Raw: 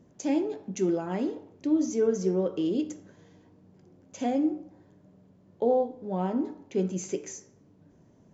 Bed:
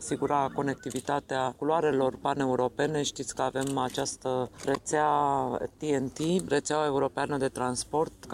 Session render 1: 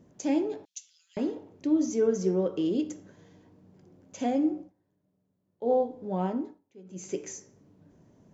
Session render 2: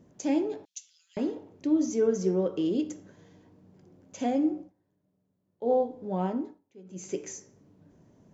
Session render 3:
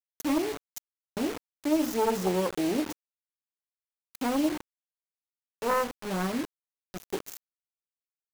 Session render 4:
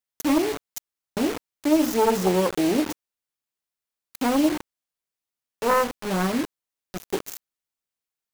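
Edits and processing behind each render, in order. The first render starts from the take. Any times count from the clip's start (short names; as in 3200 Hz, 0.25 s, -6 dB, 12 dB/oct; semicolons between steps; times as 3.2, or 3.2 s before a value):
0.65–1.17 inverse Chebyshev high-pass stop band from 820 Hz, stop band 70 dB; 4.61–5.72 dip -18 dB, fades 0.12 s; 6.26–7.2 dip -23 dB, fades 0.35 s
nothing audible
self-modulated delay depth 0.57 ms; bit-crush 6-bit
gain +6 dB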